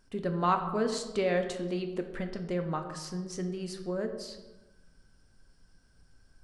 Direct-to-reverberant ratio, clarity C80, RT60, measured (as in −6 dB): 5.0 dB, 10.0 dB, 1.1 s